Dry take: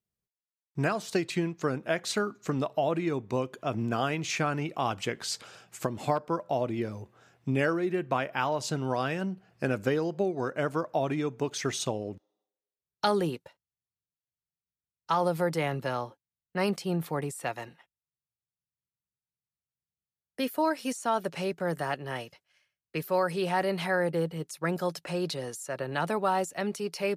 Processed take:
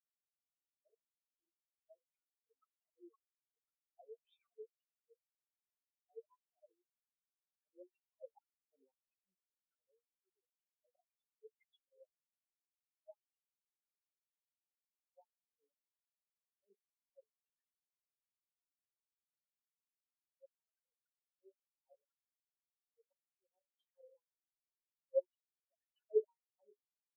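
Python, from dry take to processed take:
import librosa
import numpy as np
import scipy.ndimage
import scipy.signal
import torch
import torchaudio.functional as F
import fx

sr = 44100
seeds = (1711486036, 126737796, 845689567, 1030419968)

y = fx.octave_divider(x, sr, octaves=1, level_db=2.0, at=(8.24, 8.77))
y = fx.band_shelf(y, sr, hz=900.0, db=-16.0, octaves=2.3, at=(15.19, 16.61), fade=0.02)
y = 10.0 ** (-23.0 / 20.0) * np.tanh(y / 10.0 ** (-23.0 / 20.0))
y = fx.room_early_taps(y, sr, ms=(11, 55, 69), db=(-4.0, -17.5, -13.0))
y = fx.filter_lfo_bandpass(y, sr, shape='sine', hz=1.9, low_hz=450.0, high_hz=3700.0, q=7.8)
y = fx.auto_swell(y, sr, attack_ms=179.0)
y = fx.spectral_expand(y, sr, expansion=4.0)
y = y * 10.0 ** (9.0 / 20.0)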